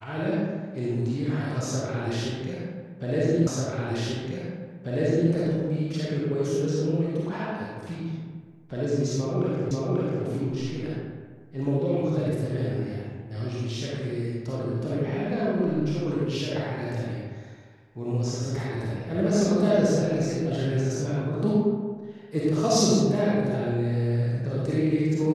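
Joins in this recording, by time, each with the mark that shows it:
0:03.47: the same again, the last 1.84 s
0:09.71: the same again, the last 0.54 s

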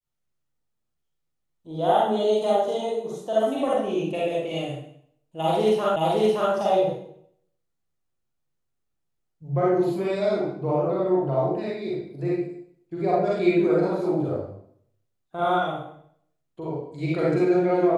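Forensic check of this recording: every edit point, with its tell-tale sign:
0:05.96: the same again, the last 0.57 s

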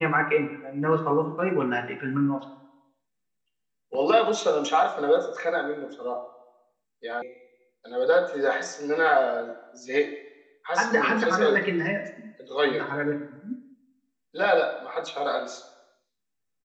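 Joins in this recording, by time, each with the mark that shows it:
0:07.22: cut off before it has died away

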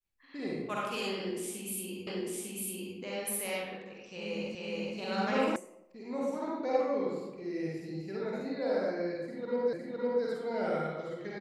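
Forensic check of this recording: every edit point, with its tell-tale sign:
0:02.07: the same again, the last 0.9 s
0:04.55: the same again, the last 0.42 s
0:05.56: cut off before it has died away
0:09.73: the same again, the last 0.51 s

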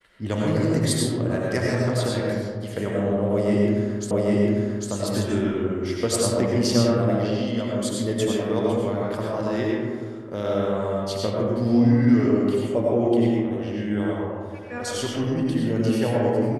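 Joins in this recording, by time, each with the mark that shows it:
0:04.11: the same again, the last 0.8 s

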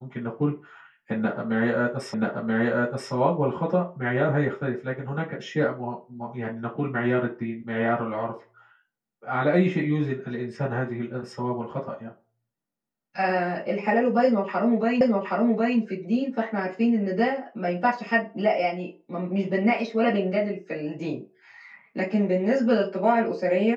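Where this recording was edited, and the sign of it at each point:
0:02.14: the same again, the last 0.98 s
0:15.01: the same again, the last 0.77 s

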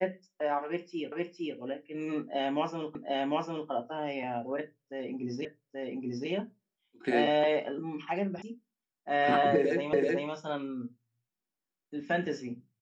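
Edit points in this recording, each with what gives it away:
0:01.12: the same again, the last 0.46 s
0:02.95: the same again, the last 0.75 s
0:05.45: the same again, the last 0.83 s
0:08.42: cut off before it has died away
0:09.93: the same again, the last 0.38 s

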